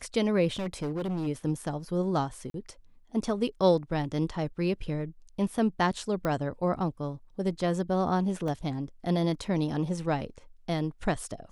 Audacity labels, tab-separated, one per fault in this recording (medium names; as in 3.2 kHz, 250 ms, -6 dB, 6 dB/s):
0.520000	1.280000	clipped -28 dBFS
2.500000	2.540000	dropout 42 ms
6.250000	6.250000	pop -18 dBFS
8.480000	8.480000	dropout 3 ms